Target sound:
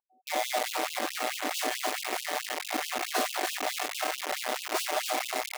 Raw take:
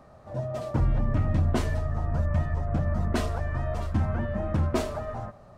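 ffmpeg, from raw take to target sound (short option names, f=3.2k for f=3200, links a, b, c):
-filter_complex "[0:a]aeval=exprs='val(0)+0.0282*sin(2*PI*750*n/s)':c=same,asplit=3[a][b][c];[a]afade=t=out:st=2.2:d=0.02[d];[b]asubboost=boost=6.5:cutoff=87,afade=t=in:st=2.2:d=0.02,afade=t=out:st=2.69:d=0.02[e];[c]afade=t=in:st=2.69:d=0.02[f];[d][e][f]amix=inputs=3:normalize=0,asplit=2[g][h];[h]aecho=0:1:291|582|873|1164|1455|1746|2037:0.501|0.286|0.163|0.0928|0.0529|0.0302|0.0172[i];[g][i]amix=inputs=2:normalize=0,asettb=1/sr,asplit=3[j][k][l];[j]atrim=end=4.104[m];[k]atrim=start=4.1:end=4.78,asetpts=PTS-STARTPTS,afade=t=in:d=0.004:c=qsin,afade=t=out:st=0.676:d=0.004:c=qsin,asoftclip=type=hard:threshold=-23.5dB[n];[l]atrim=start=4.776[o];[m][n]acrossfade=d=0.004:c1=hsin:c2=qsin[p];[p][o]acrossfade=d=0.004:c1=qsin:c2=hsin,acrossover=split=290[q][r];[r]acrusher=bits=4:mix=0:aa=0.000001[s];[q][s]amix=inputs=2:normalize=0,afftfilt=real='re*gte(b*sr/1024,220*pow(2600/220,0.5+0.5*sin(2*PI*4.6*pts/sr)))':imag='im*gte(b*sr/1024,220*pow(2600/220,0.5+0.5*sin(2*PI*4.6*pts/sr)))':win_size=1024:overlap=0.75,volume=1.5dB"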